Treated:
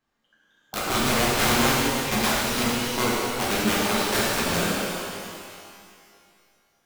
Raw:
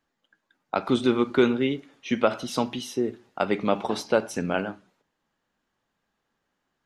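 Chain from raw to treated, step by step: tracing distortion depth 0.14 ms; integer overflow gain 18.5 dB; pitch-shifted reverb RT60 2.2 s, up +12 st, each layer -8 dB, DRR -7.5 dB; trim -3.5 dB

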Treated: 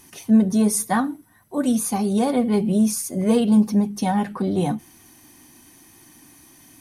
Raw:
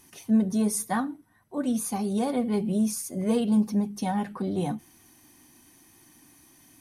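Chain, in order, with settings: 1.04–1.75 s: treble shelf 7.3 kHz +11 dB; trim +6.5 dB

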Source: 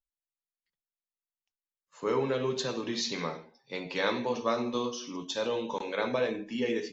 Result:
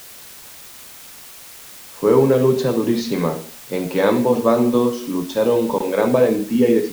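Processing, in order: tilt shelf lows +9 dB, about 1.2 kHz; word length cut 8-bit, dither triangular; trim +8.5 dB

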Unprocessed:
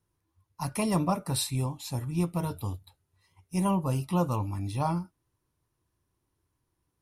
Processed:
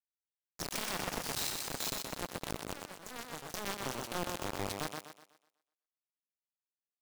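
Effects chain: steep low-pass 8.1 kHz 48 dB/octave; peaking EQ 1 kHz -12.5 dB 1.5 oct; in parallel at +2 dB: compression 12:1, threshold -40 dBFS, peak gain reduction 17.5 dB; on the sum: peak limiter -23.5 dBFS, peak gain reduction 8 dB; level held to a coarse grid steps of 22 dB; companded quantiser 2-bit; ever faster or slower copies 87 ms, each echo +3 st, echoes 3, each echo -6 dB; on a send: thinning echo 124 ms, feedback 39%, high-pass 150 Hz, level -4 dB

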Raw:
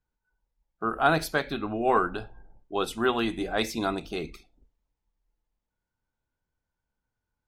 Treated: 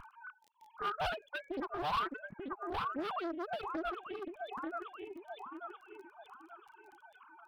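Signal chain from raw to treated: formants replaced by sine waves; upward compressor, threshold -35 dBFS; tilt EQ -4.5 dB/octave; on a send: thinning echo 885 ms, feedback 39%, high-pass 280 Hz, level -11 dB; on the sum: overload inside the chain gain 25 dB; compression 4:1, threshold -40 dBFS, peak gain reduction 11 dB; static phaser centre 1.9 kHz, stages 6; crackle 21 per s -55 dBFS; reverb removal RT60 1.8 s; loudspeaker Doppler distortion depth 0.73 ms; trim +8 dB

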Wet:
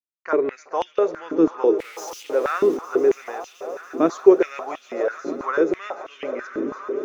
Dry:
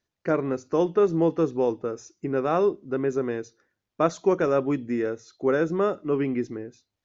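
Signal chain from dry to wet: 1.79–2.77 s: jump at every zero crossing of -34.5 dBFS; expander -49 dBFS; on a send: echo with a slow build-up 143 ms, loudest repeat 5, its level -17 dB; on the sum: step-sequenced high-pass 6.1 Hz 280–3000 Hz; trim -1 dB

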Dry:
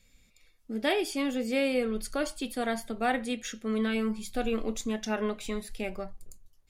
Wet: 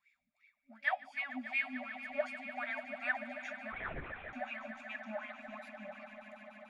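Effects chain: wah-wah 2.7 Hz 330–2400 Hz, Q 11; FFT band-reject 270–570 Hz; on a send: echo with a slow build-up 147 ms, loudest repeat 5, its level -14.5 dB; 3.72–4.33 s: on the sum: LPC vocoder at 8 kHz whisper; trim +7.5 dB

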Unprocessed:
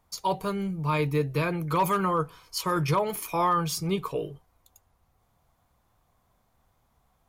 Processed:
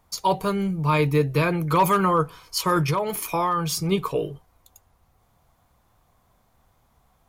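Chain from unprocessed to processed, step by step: 2.81–3.92 s: compression 3:1, threshold -27 dBFS, peak gain reduction 5.5 dB; trim +5.5 dB

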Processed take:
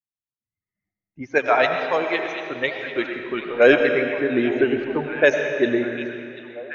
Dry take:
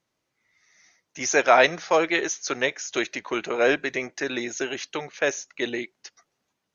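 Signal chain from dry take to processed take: expander on every frequency bin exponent 1.5; low-pass 4.5 kHz 12 dB/octave; level-controlled noise filter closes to 430 Hz, open at -19.5 dBFS; level rider gain up to 17 dB; 1.38–3.60 s: flange 1.3 Hz, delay 1.9 ms, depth 9.5 ms, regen -89%; repeats whose band climbs or falls 739 ms, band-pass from 3 kHz, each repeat -0.7 oct, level -10 dB; algorithmic reverb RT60 2.5 s, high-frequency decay 0.8×, pre-delay 55 ms, DRR 4.5 dB; trim -1 dB

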